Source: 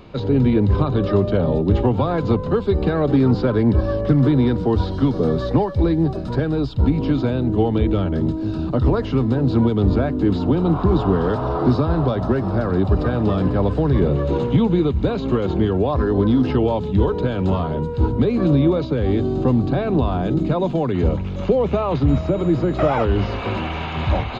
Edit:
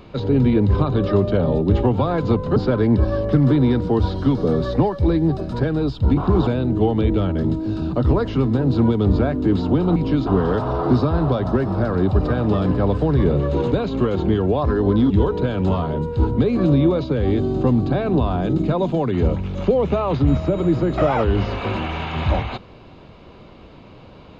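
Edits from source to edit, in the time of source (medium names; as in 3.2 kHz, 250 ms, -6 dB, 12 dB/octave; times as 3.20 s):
2.56–3.32 s: delete
6.93–7.24 s: swap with 10.73–11.03 s
14.48–15.03 s: delete
16.41–16.91 s: delete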